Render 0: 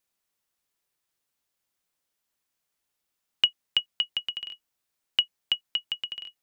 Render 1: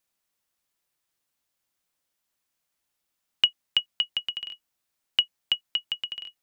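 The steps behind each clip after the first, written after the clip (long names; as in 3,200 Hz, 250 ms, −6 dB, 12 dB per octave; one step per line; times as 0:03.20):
notch filter 420 Hz, Q 12
level +1 dB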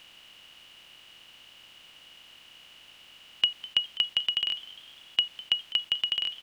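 compressor on every frequency bin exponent 0.4
echo with shifted repeats 203 ms, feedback 49%, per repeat +140 Hz, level −18.5 dB
level −4.5 dB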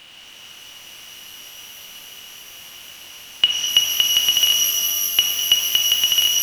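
reverb with rising layers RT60 3.5 s, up +12 semitones, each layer −2 dB, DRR −0.5 dB
level +8 dB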